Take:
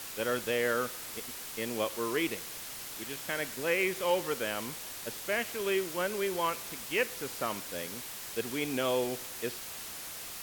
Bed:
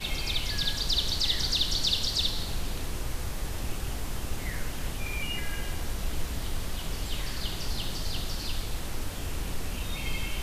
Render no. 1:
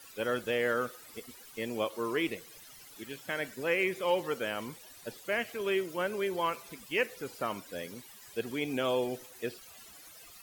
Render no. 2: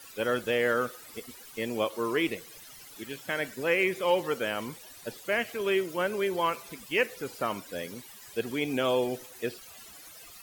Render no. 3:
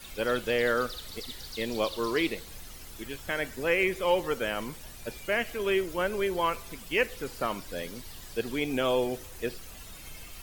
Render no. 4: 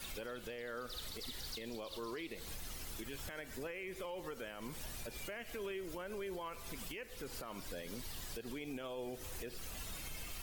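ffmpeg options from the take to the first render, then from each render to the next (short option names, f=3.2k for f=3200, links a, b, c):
-af "afftdn=nr=15:nf=-43"
-af "volume=3.5dB"
-filter_complex "[1:a]volume=-15.5dB[a];[0:a][a]amix=inputs=2:normalize=0"
-af "acompressor=threshold=-35dB:ratio=10,alimiter=level_in=11dB:limit=-24dB:level=0:latency=1:release=87,volume=-11dB"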